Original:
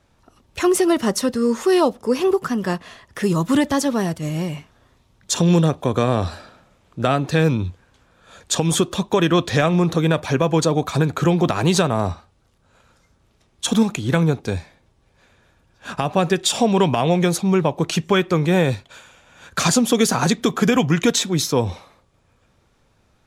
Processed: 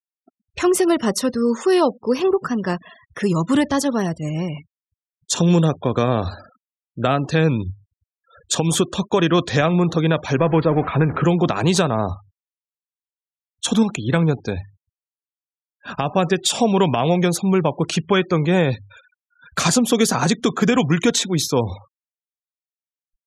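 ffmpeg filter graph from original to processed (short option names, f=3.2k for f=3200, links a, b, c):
-filter_complex "[0:a]asettb=1/sr,asplit=3[a][b][c];[a]atrim=end=10.384[d];[b]atrim=start=10.38:end=11.24,asetpts=PTS-STARTPTS,afade=t=in:d=0.004:c=qsin,afade=t=out:st=0.856:d=0.004:c=qsin,aeval=exprs='val(0)+0.5*0.0501*sgn(val(0))':c=same,lowpass=f=2.8k:w=0.5412,lowpass=f=2.8k:w=1.3066[e];[c]atrim=start=11.236[f];[d][e]acrossfade=d=0.004:c1=hsin:c2=qsin[g];[g][f]acrossfade=d=0.004:c1=qsin:c2=hsin,bandreject=f=50:t=h:w=6,bandreject=f=100:t=h:w=6,afftfilt=real='re*gte(hypot(re,im),0.0178)':imag='im*gte(hypot(re,im),0.0178)':win_size=1024:overlap=0.75"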